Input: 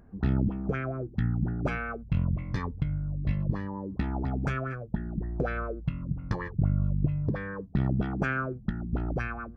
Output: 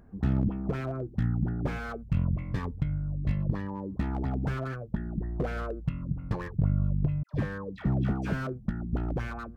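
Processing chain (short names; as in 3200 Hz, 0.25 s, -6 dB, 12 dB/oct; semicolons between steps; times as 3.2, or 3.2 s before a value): 7.23–8.47 dispersion lows, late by 0.108 s, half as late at 990 Hz; slew limiter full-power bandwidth 20 Hz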